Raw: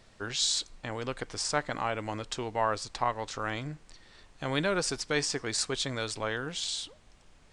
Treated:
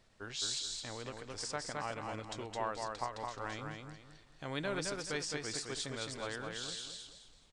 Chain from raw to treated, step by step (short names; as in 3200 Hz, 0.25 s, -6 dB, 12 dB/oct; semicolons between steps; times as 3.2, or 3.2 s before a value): on a send: feedback echo 0.214 s, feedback 33%, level -4 dB; on the sum: ending taper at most 150 dB/s; gain -9 dB